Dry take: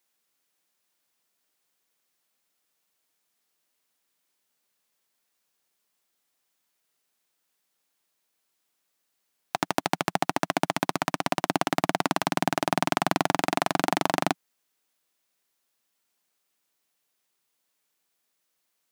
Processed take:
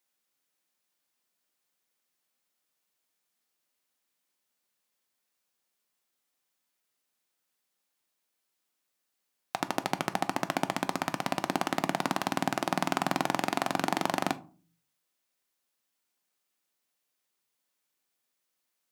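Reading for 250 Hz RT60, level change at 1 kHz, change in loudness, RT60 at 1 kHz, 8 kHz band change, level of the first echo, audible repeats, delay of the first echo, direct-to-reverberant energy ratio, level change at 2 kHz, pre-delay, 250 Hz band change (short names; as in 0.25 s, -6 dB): 0.60 s, -4.0 dB, -4.0 dB, 0.40 s, -4.5 dB, none, none, none, 10.5 dB, -4.0 dB, 3 ms, -3.5 dB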